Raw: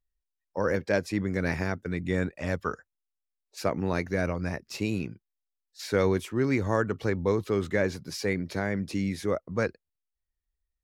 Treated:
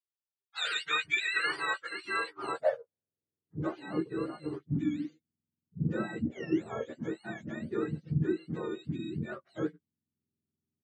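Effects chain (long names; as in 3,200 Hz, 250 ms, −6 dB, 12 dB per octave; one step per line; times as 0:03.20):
frequency axis turned over on the octave scale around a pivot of 860 Hz
band-pass filter sweep 3,800 Hz → 250 Hz, 0:00.47–0:03.99
double-tracking delay 13 ms −6.5 dB
level +8 dB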